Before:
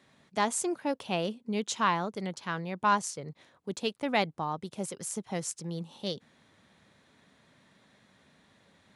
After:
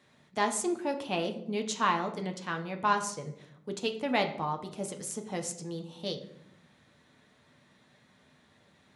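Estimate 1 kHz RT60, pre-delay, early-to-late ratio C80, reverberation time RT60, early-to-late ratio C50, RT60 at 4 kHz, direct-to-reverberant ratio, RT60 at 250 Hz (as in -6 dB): 0.60 s, 7 ms, 14.0 dB, 0.75 s, 11.0 dB, 0.50 s, 4.0 dB, 1.1 s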